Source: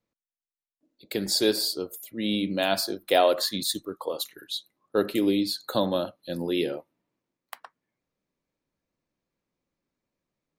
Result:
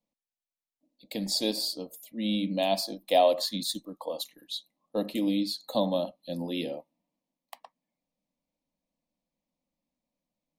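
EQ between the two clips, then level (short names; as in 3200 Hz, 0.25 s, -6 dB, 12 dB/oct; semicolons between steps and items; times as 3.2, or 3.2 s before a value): high shelf 7000 Hz -8 dB; fixed phaser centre 390 Hz, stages 6; 0.0 dB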